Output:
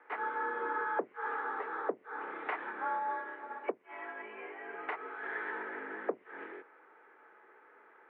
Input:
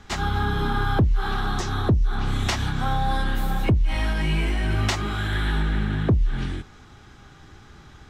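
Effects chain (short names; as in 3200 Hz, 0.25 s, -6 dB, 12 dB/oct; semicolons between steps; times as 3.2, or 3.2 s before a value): mistuned SSB +61 Hz 340–2100 Hz; 2.99–5.23 upward expander 1.5:1, over -37 dBFS; gain -6.5 dB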